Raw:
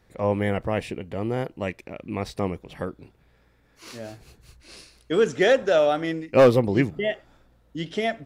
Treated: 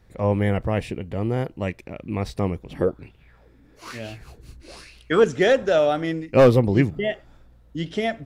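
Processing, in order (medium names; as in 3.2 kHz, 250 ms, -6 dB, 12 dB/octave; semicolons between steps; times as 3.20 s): bass shelf 150 Hz +9.5 dB; 2.71–5.24 s: sweeping bell 1.1 Hz 250–3000 Hz +15 dB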